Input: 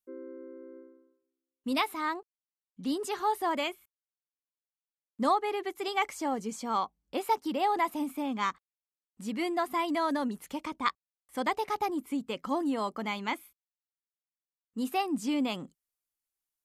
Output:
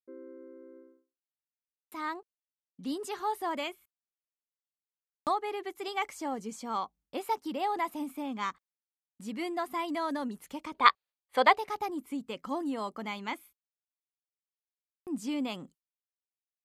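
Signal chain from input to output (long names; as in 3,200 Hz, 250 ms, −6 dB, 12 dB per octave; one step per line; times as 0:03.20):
downward expander −53 dBFS
gain on a spectral selection 0:10.75–0:11.57, 390–4,900 Hz +12 dB
buffer that repeats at 0:01.50/0:04.85/0:14.65, samples 2,048, times 8
level −3.5 dB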